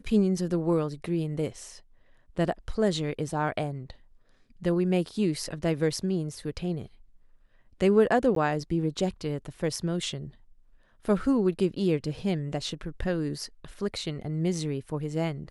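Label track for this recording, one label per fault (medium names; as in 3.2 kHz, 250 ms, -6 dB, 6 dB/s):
8.350000	8.360000	dropout 13 ms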